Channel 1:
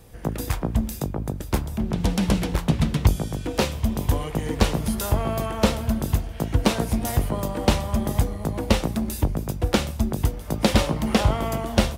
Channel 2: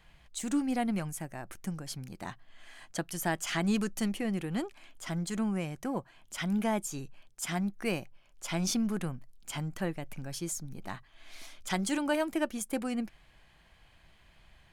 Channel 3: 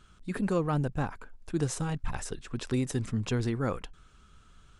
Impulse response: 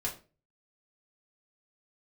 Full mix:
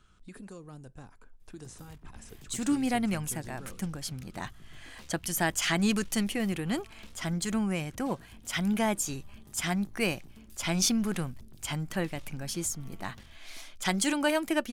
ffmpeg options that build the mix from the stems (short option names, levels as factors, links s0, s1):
-filter_complex "[0:a]equalizer=f=610:w=0.94:g=-13.5,acompressor=threshold=0.0447:ratio=2,aeval=exprs='(tanh(20*val(0)+0.65)-tanh(0.65))/20':c=same,adelay=1400,volume=0.112[s0];[1:a]adynamicequalizer=threshold=0.00562:dfrequency=1600:dqfactor=0.7:tfrequency=1600:tqfactor=0.7:attack=5:release=100:ratio=0.375:range=2.5:mode=boostabove:tftype=highshelf,adelay=2150,volume=1.26[s1];[2:a]acrossover=split=430|5000[s2][s3][s4];[s2]acompressor=threshold=0.00794:ratio=4[s5];[s3]acompressor=threshold=0.00316:ratio=4[s6];[s4]acompressor=threshold=0.00447:ratio=4[s7];[s5][s6][s7]amix=inputs=3:normalize=0,volume=0.531,asplit=2[s8][s9];[s9]volume=0.1[s10];[3:a]atrim=start_sample=2205[s11];[s10][s11]afir=irnorm=-1:irlink=0[s12];[s0][s1][s8][s12]amix=inputs=4:normalize=0"